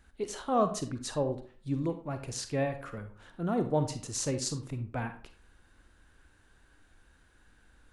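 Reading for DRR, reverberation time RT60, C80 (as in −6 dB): 8.0 dB, 0.45 s, 14.5 dB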